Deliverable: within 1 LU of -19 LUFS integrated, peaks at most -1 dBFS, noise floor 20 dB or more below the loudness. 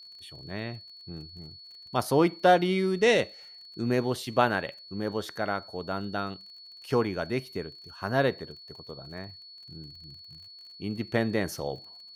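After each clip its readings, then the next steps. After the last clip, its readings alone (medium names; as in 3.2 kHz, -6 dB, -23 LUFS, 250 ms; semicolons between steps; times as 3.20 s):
tick rate 38 per s; steady tone 4.4 kHz; tone level -46 dBFS; loudness -28.5 LUFS; peak level -7.5 dBFS; loudness target -19.0 LUFS
-> de-click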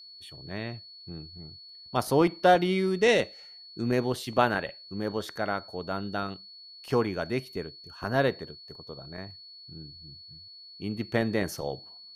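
tick rate 0 per s; steady tone 4.4 kHz; tone level -46 dBFS
-> band-stop 4.4 kHz, Q 30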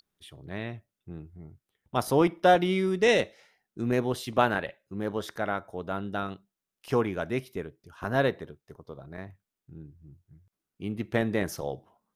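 steady tone not found; loudness -28.5 LUFS; peak level -8.0 dBFS; loudness target -19.0 LUFS
-> trim +9.5 dB; peak limiter -1 dBFS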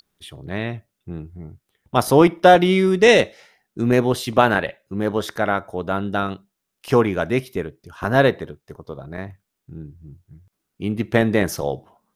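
loudness -19.0 LUFS; peak level -1.0 dBFS; noise floor -79 dBFS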